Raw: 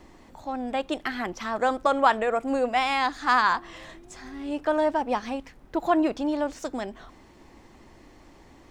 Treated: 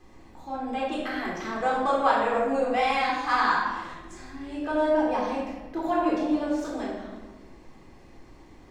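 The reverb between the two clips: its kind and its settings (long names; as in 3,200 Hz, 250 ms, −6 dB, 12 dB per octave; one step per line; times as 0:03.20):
rectangular room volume 870 cubic metres, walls mixed, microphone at 3.8 metres
level −9 dB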